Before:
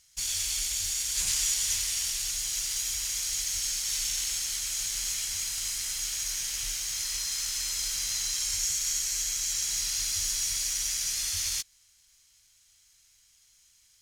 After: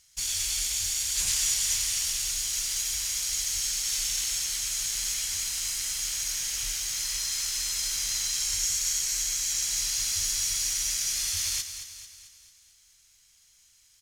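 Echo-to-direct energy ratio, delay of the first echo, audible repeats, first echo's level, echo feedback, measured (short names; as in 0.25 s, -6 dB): -8.5 dB, 0.221 s, 5, -10.0 dB, 52%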